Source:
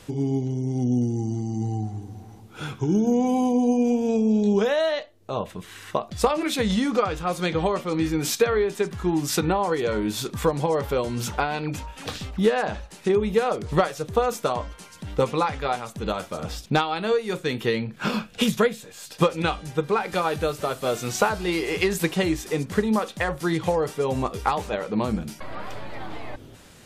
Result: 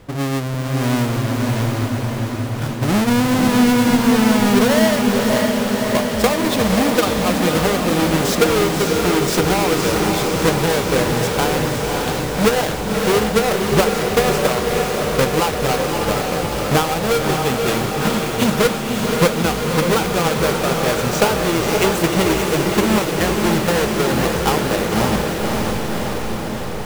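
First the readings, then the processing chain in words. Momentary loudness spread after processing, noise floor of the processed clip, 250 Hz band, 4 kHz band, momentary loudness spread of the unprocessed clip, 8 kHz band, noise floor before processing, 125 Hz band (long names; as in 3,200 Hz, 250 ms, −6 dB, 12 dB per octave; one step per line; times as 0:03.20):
6 LU, −23 dBFS, +7.5 dB, +10.5 dB, 12 LU, +11.0 dB, −47 dBFS, +8.0 dB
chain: each half-wave held at its own peak
feedback delay with all-pass diffusion 562 ms, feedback 74%, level −3 dB
one half of a high-frequency compander decoder only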